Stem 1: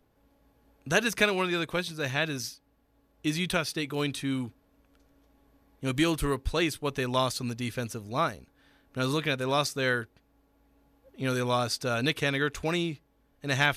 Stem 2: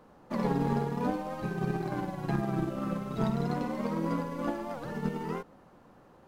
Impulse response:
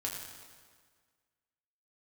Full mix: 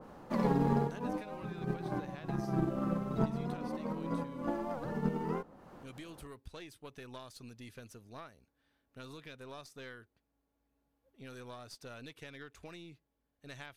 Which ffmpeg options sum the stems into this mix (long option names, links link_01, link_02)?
-filter_complex "[0:a]highpass=41,acompressor=threshold=-30dB:ratio=8,aeval=exprs='0.237*(cos(1*acos(clip(val(0)/0.237,-1,1)))-cos(1*PI/2))+0.0168*(cos(3*acos(clip(val(0)/0.237,-1,1)))-cos(3*PI/2))+0.0168*(cos(6*acos(clip(val(0)/0.237,-1,1)))-cos(6*PI/2))':channel_layout=same,volume=-13dB,asplit=2[link_01][link_02];[1:a]acompressor=mode=upward:threshold=-44dB:ratio=2.5,volume=-0.5dB[link_03];[link_02]apad=whole_len=276571[link_04];[link_03][link_04]sidechaincompress=threshold=-53dB:ratio=8:attack=9.2:release=137[link_05];[link_01][link_05]amix=inputs=2:normalize=0,adynamicequalizer=threshold=0.00224:dfrequency=1600:dqfactor=0.7:tfrequency=1600:tqfactor=0.7:attack=5:release=100:ratio=0.375:range=3.5:mode=cutabove:tftype=highshelf"